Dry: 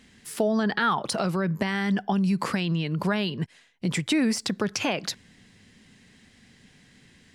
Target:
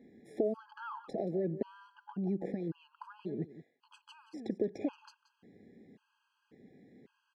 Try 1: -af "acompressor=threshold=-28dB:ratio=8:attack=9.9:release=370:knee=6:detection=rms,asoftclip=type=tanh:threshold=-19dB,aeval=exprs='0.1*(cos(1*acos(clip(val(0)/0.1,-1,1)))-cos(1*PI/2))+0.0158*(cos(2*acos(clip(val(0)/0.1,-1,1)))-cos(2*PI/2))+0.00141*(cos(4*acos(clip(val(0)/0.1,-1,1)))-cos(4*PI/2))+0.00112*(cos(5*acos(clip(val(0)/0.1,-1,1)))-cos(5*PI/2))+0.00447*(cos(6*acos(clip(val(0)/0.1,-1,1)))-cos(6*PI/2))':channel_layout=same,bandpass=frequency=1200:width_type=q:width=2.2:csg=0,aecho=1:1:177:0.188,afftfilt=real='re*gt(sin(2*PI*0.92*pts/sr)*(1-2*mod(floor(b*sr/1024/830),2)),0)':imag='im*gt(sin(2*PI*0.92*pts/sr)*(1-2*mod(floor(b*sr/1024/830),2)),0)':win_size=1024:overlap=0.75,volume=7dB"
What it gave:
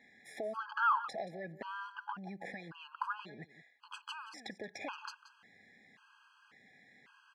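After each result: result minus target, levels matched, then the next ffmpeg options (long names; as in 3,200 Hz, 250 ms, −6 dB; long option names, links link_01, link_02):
1,000 Hz band +13.5 dB; soft clipping: distortion +16 dB
-af "acompressor=threshold=-28dB:ratio=8:attack=9.9:release=370:knee=6:detection=rms,asoftclip=type=tanh:threshold=-19dB,aeval=exprs='0.1*(cos(1*acos(clip(val(0)/0.1,-1,1)))-cos(1*PI/2))+0.0158*(cos(2*acos(clip(val(0)/0.1,-1,1)))-cos(2*PI/2))+0.00141*(cos(4*acos(clip(val(0)/0.1,-1,1)))-cos(4*PI/2))+0.00112*(cos(5*acos(clip(val(0)/0.1,-1,1)))-cos(5*PI/2))+0.00447*(cos(6*acos(clip(val(0)/0.1,-1,1)))-cos(6*PI/2))':channel_layout=same,bandpass=frequency=380:width_type=q:width=2.2:csg=0,aecho=1:1:177:0.188,afftfilt=real='re*gt(sin(2*PI*0.92*pts/sr)*(1-2*mod(floor(b*sr/1024/830),2)),0)':imag='im*gt(sin(2*PI*0.92*pts/sr)*(1-2*mod(floor(b*sr/1024/830),2)),0)':win_size=1024:overlap=0.75,volume=7dB"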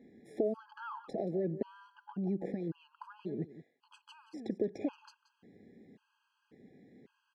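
soft clipping: distortion +16 dB
-af "acompressor=threshold=-28dB:ratio=8:attack=9.9:release=370:knee=6:detection=rms,asoftclip=type=tanh:threshold=-10.5dB,aeval=exprs='0.1*(cos(1*acos(clip(val(0)/0.1,-1,1)))-cos(1*PI/2))+0.0158*(cos(2*acos(clip(val(0)/0.1,-1,1)))-cos(2*PI/2))+0.00141*(cos(4*acos(clip(val(0)/0.1,-1,1)))-cos(4*PI/2))+0.00112*(cos(5*acos(clip(val(0)/0.1,-1,1)))-cos(5*PI/2))+0.00447*(cos(6*acos(clip(val(0)/0.1,-1,1)))-cos(6*PI/2))':channel_layout=same,bandpass=frequency=380:width_type=q:width=2.2:csg=0,aecho=1:1:177:0.188,afftfilt=real='re*gt(sin(2*PI*0.92*pts/sr)*(1-2*mod(floor(b*sr/1024/830),2)),0)':imag='im*gt(sin(2*PI*0.92*pts/sr)*(1-2*mod(floor(b*sr/1024/830),2)),0)':win_size=1024:overlap=0.75,volume=7dB"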